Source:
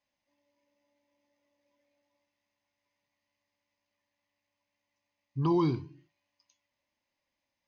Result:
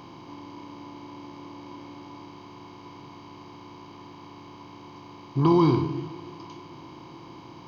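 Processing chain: per-bin compression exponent 0.4; warbling echo 0.147 s, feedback 79%, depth 73 cents, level -22 dB; gain +5 dB

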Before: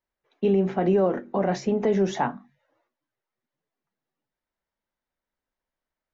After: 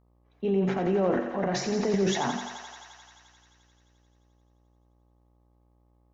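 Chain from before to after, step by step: transient shaper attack -3 dB, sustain +10 dB; buzz 60 Hz, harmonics 21, -60 dBFS -6 dB/oct; thinning echo 87 ms, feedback 82%, high-pass 400 Hz, level -7.5 dB; gain -4.5 dB

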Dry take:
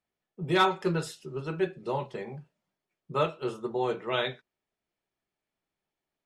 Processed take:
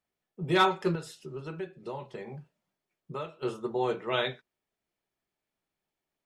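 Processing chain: 0.95–3.43 compressor 3:1, threshold -37 dBFS, peak gain reduction 12 dB

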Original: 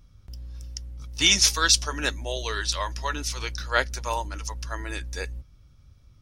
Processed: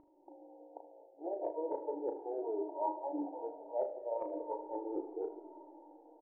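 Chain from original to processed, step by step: tracing distortion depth 0.037 ms; FFT band-pass 290–950 Hz; reverse; compressor 6:1, threshold -46 dBFS, peak gain reduction 21 dB; reverse; air absorption 400 m; early reflections 35 ms -6.5 dB, 77 ms -14 dB; reverb RT60 5.1 s, pre-delay 45 ms, DRR 9.5 dB; cascading flanger falling 0.36 Hz; gain +15.5 dB

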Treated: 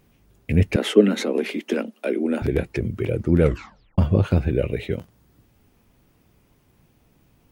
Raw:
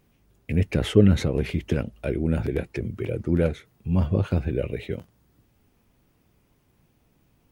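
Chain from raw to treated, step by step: 0.76–2.42 steep high-pass 210 Hz 72 dB/oct; 3.41 tape stop 0.57 s; gain +4.5 dB

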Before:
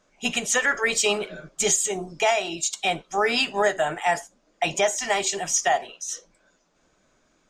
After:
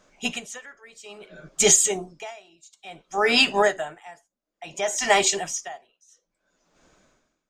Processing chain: dB-linear tremolo 0.58 Hz, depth 31 dB; gain +5.5 dB

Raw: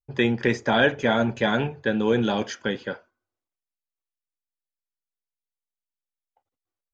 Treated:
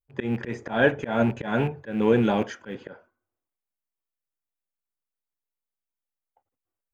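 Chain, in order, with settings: rattling part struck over -31 dBFS, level -26 dBFS; bell 4800 Hz -12.5 dB 1.6 oct; auto swell 0.175 s; gain +2 dB

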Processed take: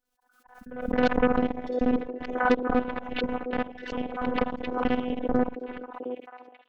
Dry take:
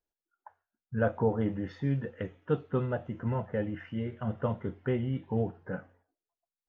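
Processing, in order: local time reversal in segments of 49 ms; dynamic EQ 900 Hz, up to -6 dB, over -50 dBFS, Q 1.7; AGC gain up to 8 dB; pre-echo 0.267 s -20 dB; added harmonics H 6 -23 dB, 7 -15 dB, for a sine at -7.5 dBFS; robotiser 249 Hz; delay with a stepping band-pass 0.711 s, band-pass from 410 Hz, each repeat 1.4 oct, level -6.5 dB; backwards sustainer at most 66 dB/s

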